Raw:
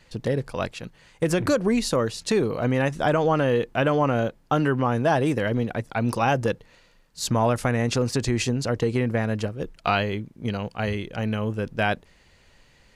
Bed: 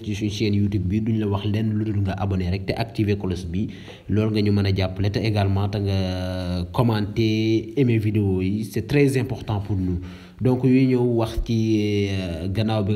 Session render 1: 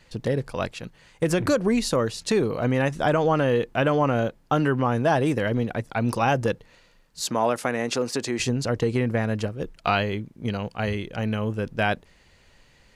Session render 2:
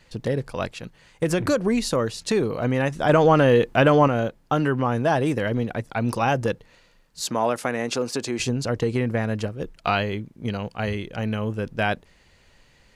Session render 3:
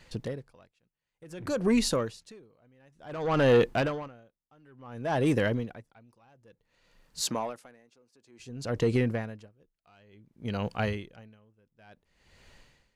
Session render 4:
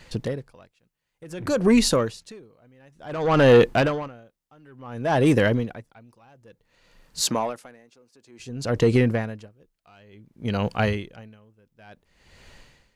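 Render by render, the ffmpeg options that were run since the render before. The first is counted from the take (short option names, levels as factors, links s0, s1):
-filter_complex "[0:a]asettb=1/sr,asplit=3[s0][s1][s2];[s0]atrim=end=7.224[s3];[s1]atrim=start=7.22:end=8.4,asetpts=PTS-STARTPTS,afade=t=in:d=0.004:c=qsin,afade=t=out:st=1.176:d=0.004:c=qsin,highpass=260[s4];[s2]atrim=start=8.396[s5];[s3][s4]acrossfade=d=0.004:c1=hsin:c2=qsin[s6];[s6][s5]acrossfade=d=0.004:c1=qsin:c2=hsin"
-filter_complex "[0:a]asettb=1/sr,asplit=3[s0][s1][s2];[s0]atrim=end=3.094[s3];[s1]atrim=start=3.09:end=4.08,asetpts=PTS-STARTPTS,afade=t=in:d=0.004:c=qsin,afade=t=out:st=0.986:d=0.004:c=qsin,acontrast=34[s4];[s2]atrim=start=4.076[s5];[s3][s4]acrossfade=d=0.004:c1=hsin:c2=qsin[s6];[s6][s5]acrossfade=d=0.004:c1=qsin:c2=hsin,asettb=1/sr,asplit=3[s7][s8][s9];[s7]atrim=end=7.884[s10];[s8]atrim=start=7.88:end=8.67,asetpts=PTS-STARTPTS,afade=t=in:d=0.004:c=qsin,afade=t=out:st=0.786:d=0.004:c=qsin,bandreject=f=1900:w=11[s11];[s9]atrim=start=8.666[s12];[s10][s11]acrossfade=d=0.004:c1=hsin:c2=qsin[s13];[s13][s12]acrossfade=d=0.004:c1=qsin:c2=hsin"
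-af "asoftclip=type=tanh:threshold=0.188,aeval=exprs='val(0)*pow(10,-38*(0.5-0.5*cos(2*PI*0.56*n/s))/20)':c=same"
-af "volume=2.24"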